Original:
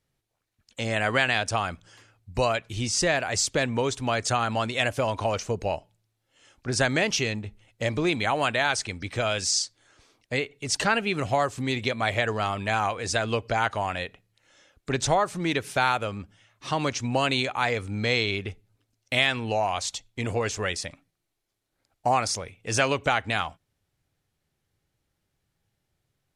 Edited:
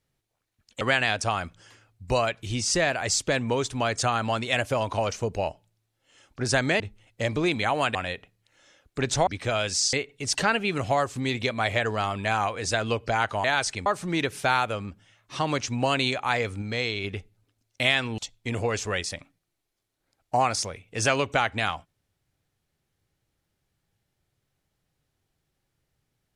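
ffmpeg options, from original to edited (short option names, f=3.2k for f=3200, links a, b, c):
-filter_complex "[0:a]asplit=11[a][b][c][d][e][f][g][h][i][j][k];[a]atrim=end=0.812[l];[b]atrim=start=1.078:end=7.072[m];[c]atrim=start=7.408:end=8.562[n];[d]atrim=start=13.858:end=15.182[o];[e]atrim=start=8.978:end=9.642[p];[f]atrim=start=10.348:end=13.862[q];[g]atrim=start=8.558:end=8.982[r];[h]atrim=start=15.178:end=17.942[s];[i]atrim=start=17.938:end=18.362,asetpts=PTS-STARTPTS,volume=-4dB[t];[j]atrim=start=18.358:end=19.502[u];[k]atrim=start=19.898[v];[l][m]acrossfade=d=0.004:c1=hsin:c2=hsin[w];[w][n]acrossfade=d=0.004:c1=hsin:c2=hsin[x];[x][o]acrossfade=d=0.004:c1=hsin:c2=hsin[y];[y][p]acrossfade=d=0.004:c1=hsin:c2=hsin[z];[z][q]acrossfade=d=0.004:c1=hsin:c2=hsin[aa];[aa][r]acrossfade=d=0.004:c1=hsin:c2=hsin[ab];[ab][s]acrossfade=d=0.004:c1=hsin:c2=hsin[ac];[ac][t]acrossfade=d=0.004:c1=hsin:c2=hsin[ad];[ad][u]acrossfade=d=0.004:c1=hsin:c2=hsin[ae];[ae][v]acrossfade=d=0.004:c1=hsin:c2=hsin"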